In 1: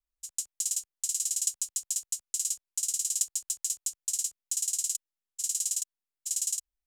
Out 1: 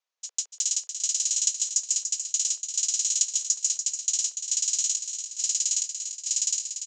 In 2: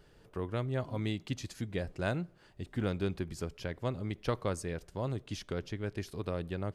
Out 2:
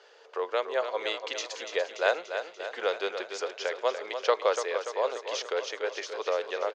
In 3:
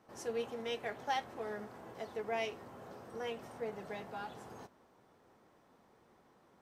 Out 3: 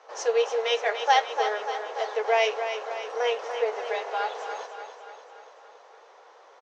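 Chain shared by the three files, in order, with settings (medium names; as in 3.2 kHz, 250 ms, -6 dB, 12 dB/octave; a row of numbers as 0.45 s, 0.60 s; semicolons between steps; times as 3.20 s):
Chebyshev band-pass 460–6600 Hz, order 4; on a send: feedback delay 290 ms, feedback 58%, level -8.5 dB; on the sum: peak normalisation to -9 dBFS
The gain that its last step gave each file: +9.0 dB, +10.5 dB, +15.5 dB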